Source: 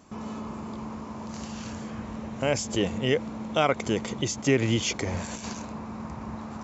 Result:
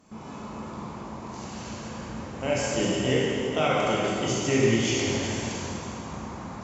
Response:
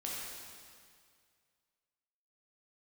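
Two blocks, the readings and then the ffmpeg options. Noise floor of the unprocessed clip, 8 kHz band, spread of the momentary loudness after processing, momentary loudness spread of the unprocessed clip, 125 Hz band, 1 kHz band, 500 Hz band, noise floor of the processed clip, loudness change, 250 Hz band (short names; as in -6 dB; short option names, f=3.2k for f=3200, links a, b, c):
-39 dBFS, n/a, 15 LU, 13 LU, +1.0 dB, +2.0 dB, +2.5 dB, -39 dBFS, +2.5 dB, +1.0 dB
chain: -filter_complex "[1:a]atrim=start_sample=2205,asetrate=30870,aresample=44100[a];[0:a][a]afir=irnorm=-1:irlink=0,volume=-2.5dB"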